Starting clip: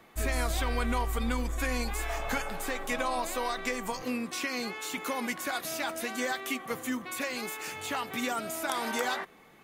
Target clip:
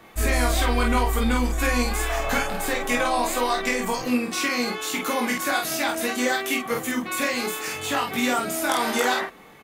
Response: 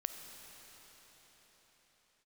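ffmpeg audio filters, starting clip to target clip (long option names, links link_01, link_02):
-af "aecho=1:1:21|49:0.631|0.668,volume=6dB"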